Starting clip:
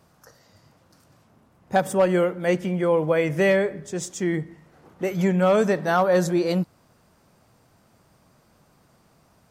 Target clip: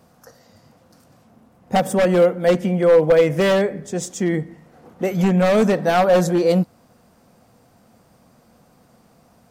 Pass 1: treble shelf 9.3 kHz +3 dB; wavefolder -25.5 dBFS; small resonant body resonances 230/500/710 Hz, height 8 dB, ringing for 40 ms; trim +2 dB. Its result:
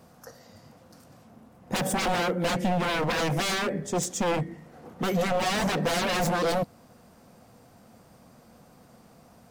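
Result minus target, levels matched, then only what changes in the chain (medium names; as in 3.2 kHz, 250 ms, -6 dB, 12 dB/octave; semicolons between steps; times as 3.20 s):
wavefolder: distortion +26 dB
change: wavefolder -15 dBFS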